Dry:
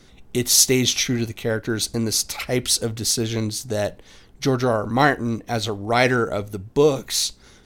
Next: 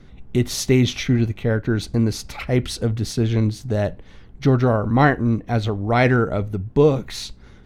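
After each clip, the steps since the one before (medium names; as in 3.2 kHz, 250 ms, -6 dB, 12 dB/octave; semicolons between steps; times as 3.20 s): tone controls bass +8 dB, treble -15 dB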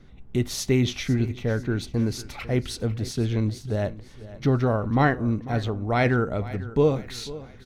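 feedback delay 497 ms, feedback 43%, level -17 dB; trim -5 dB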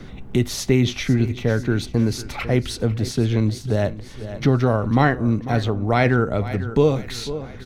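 three bands compressed up and down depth 40%; trim +4.5 dB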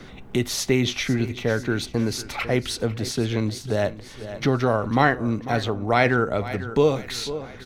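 bass shelf 280 Hz -9.5 dB; trim +1.5 dB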